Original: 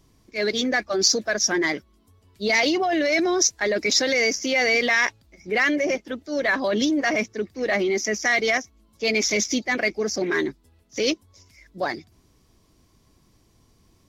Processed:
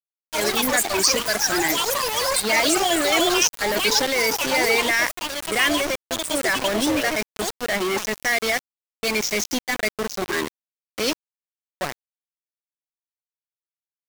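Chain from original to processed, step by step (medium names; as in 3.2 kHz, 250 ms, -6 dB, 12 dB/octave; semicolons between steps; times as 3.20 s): ever faster or slower copies 82 ms, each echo +7 st, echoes 3; small samples zeroed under -21.5 dBFS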